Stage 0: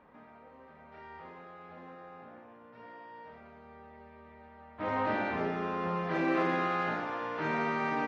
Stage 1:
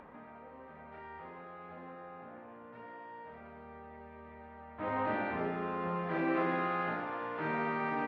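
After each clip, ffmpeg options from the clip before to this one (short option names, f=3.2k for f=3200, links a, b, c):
-filter_complex "[0:a]lowpass=2.9k,asplit=2[a][b];[b]acompressor=mode=upward:threshold=-36dB:ratio=2.5,volume=1dB[c];[a][c]amix=inputs=2:normalize=0,volume=-9dB"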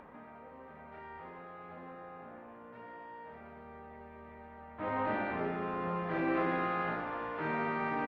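-filter_complex "[0:a]asplit=6[a][b][c][d][e][f];[b]adelay=186,afreqshift=-55,volume=-18.5dB[g];[c]adelay=372,afreqshift=-110,volume=-23.2dB[h];[d]adelay=558,afreqshift=-165,volume=-28dB[i];[e]adelay=744,afreqshift=-220,volume=-32.7dB[j];[f]adelay=930,afreqshift=-275,volume=-37.4dB[k];[a][g][h][i][j][k]amix=inputs=6:normalize=0"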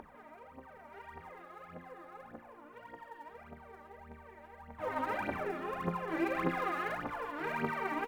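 -af "aphaser=in_gain=1:out_gain=1:delay=3.6:decay=0.75:speed=1.7:type=triangular,aemphasis=mode=production:type=cd,volume=-5dB"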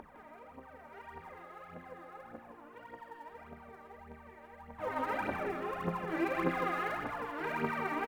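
-af "aecho=1:1:159:0.398"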